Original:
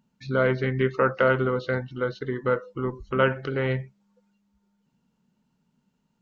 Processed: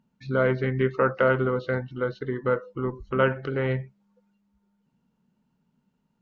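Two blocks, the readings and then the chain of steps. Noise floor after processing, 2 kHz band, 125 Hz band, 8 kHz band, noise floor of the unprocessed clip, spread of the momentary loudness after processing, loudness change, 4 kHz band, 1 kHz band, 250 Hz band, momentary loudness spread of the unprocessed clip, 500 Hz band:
-74 dBFS, -1.5 dB, 0.0 dB, n/a, -73 dBFS, 9 LU, -0.5 dB, -4.0 dB, -1.0 dB, 0.0 dB, 9 LU, 0.0 dB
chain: high shelf 3800 Hz -9.5 dB

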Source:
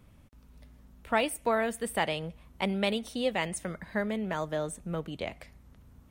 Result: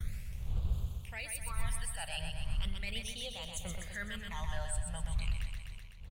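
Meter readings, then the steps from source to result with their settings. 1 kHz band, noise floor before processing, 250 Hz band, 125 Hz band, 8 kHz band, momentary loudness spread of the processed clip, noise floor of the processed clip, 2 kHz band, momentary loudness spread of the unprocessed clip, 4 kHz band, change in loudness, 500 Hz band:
-14.0 dB, -57 dBFS, -15.5 dB, +1.5 dB, 0.0 dB, 5 LU, -47 dBFS, -8.0 dB, 9 LU, -3.5 dB, -8.0 dB, -19.0 dB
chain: ending faded out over 1.74 s; wind noise 190 Hz -37 dBFS; expander -48 dBFS; passive tone stack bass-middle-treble 10-0-10; reverse; compressor 6:1, threshold -50 dBFS, peak gain reduction 19 dB; reverse; low shelf 97 Hz +9 dB; phaser stages 12, 0.37 Hz, lowest notch 360–1900 Hz; on a send: feedback echo 0.126 s, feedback 58%, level -5.5 dB; on the sum: mismatched tape noise reduction encoder only; gain +12 dB

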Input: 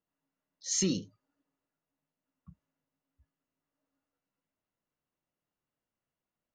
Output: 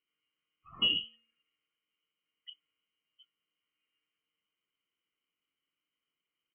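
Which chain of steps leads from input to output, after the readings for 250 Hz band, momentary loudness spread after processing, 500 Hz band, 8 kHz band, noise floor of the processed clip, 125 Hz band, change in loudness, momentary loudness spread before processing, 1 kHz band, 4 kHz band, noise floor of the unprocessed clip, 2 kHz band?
-15.0 dB, 12 LU, -14.0 dB, under -40 dB, under -85 dBFS, -16.0 dB, +2.0 dB, 11 LU, +12.0 dB, +11.0 dB, under -85 dBFS, +11.5 dB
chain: comb 1.1 ms, depth 63%; de-hum 261.2 Hz, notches 31; inverted band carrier 3100 Hz

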